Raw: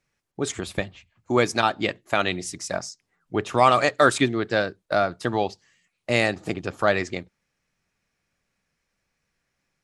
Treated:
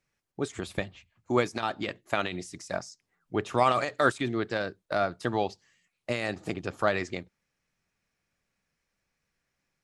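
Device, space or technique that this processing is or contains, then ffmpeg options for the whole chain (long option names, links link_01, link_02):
de-esser from a sidechain: -filter_complex "[0:a]asplit=2[link_01][link_02];[link_02]highpass=frequency=4100:width=0.5412,highpass=frequency=4100:width=1.3066,apad=whole_len=433768[link_03];[link_01][link_03]sidechaincompress=threshold=-38dB:ratio=10:attack=4.4:release=58,volume=-4dB"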